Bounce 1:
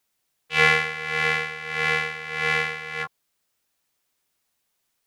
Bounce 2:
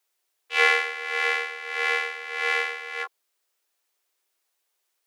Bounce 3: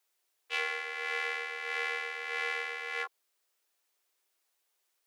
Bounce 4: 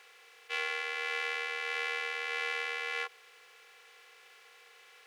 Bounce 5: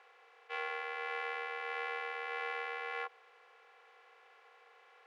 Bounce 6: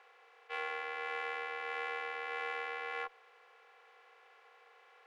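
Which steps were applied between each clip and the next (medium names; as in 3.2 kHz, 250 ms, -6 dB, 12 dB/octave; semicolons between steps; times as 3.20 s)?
steep high-pass 320 Hz 72 dB/octave; trim -1.5 dB
compression 10:1, threshold -27 dBFS, peak gain reduction 14 dB; trim -2 dB
spectral levelling over time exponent 0.4; trim -3 dB
band-pass filter 760 Hz, Q 1.2; trim +3 dB
Chebyshev shaper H 6 -36 dB, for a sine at -24.5 dBFS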